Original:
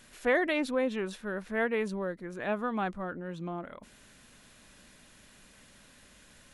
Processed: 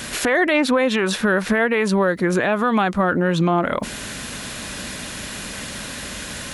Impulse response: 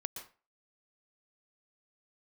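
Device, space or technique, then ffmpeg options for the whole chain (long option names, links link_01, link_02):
mastering chain: -filter_complex "[0:a]highpass=43,equalizer=frequency=4600:width_type=o:width=0.77:gain=1.5,acrossover=split=790|2300[link_01][link_02][link_03];[link_01]acompressor=threshold=-39dB:ratio=4[link_04];[link_02]acompressor=threshold=-39dB:ratio=4[link_05];[link_03]acompressor=threshold=-48dB:ratio=4[link_06];[link_04][link_05][link_06]amix=inputs=3:normalize=0,acompressor=threshold=-42dB:ratio=2,alimiter=level_in=33dB:limit=-1dB:release=50:level=0:latency=1,volume=-7dB"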